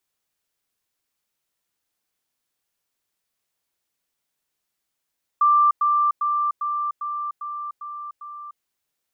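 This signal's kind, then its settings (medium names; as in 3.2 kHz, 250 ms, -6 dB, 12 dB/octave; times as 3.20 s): level ladder 1.18 kHz -13 dBFS, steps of -3 dB, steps 8, 0.30 s 0.10 s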